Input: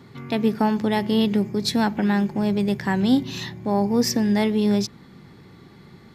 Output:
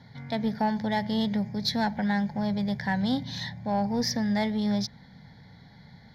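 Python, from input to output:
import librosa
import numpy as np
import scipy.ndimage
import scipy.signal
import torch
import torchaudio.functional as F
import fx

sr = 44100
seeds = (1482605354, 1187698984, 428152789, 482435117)

p1 = scipy.signal.sosfilt(scipy.signal.butter(2, 9000.0, 'lowpass', fs=sr, output='sos'), x)
p2 = fx.fixed_phaser(p1, sr, hz=1800.0, stages=8)
p3 = 10.0 ** (-25.0 / 20.0) * np.tanh(p2 / 10.0 ** (-25.0 / 20.0))
p4 = p2 + (p3 * 10.0 ** (-5.0 / 20.0))
y = p4 * 10.0 ** (-4.5 / 20.0)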